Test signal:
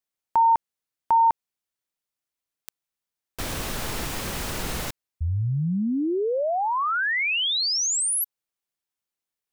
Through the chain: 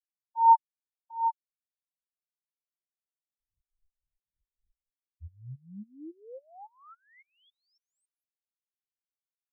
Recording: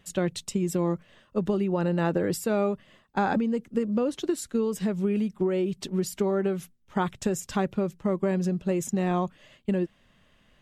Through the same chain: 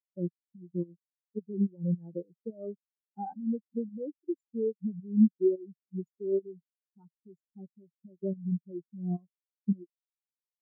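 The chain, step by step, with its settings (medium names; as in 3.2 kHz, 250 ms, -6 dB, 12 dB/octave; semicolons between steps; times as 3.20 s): in parallel at -3 dB: compression, threshold -36 dBFS; on the sum: tremolo saw up 3.6 Hz, depth 70%; spectral contrast expander 4:1; trim -1.5 dB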